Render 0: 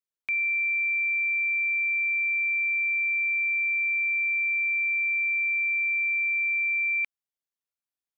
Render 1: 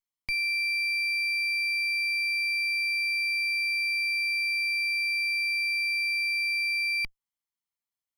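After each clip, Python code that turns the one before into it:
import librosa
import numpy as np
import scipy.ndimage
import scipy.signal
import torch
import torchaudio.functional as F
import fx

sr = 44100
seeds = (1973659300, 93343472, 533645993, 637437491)

y = fx.lower_of_two(x, sr, delay_ms=0.95)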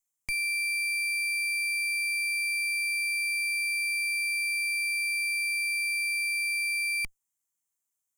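y = fx.high_shelf_res(x, sr, hz=5600.0, db=8.0, q=3.0)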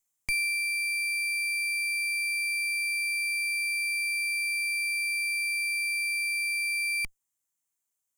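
y = fx.rider(x, sr, range_db=10, speed_s=0.5)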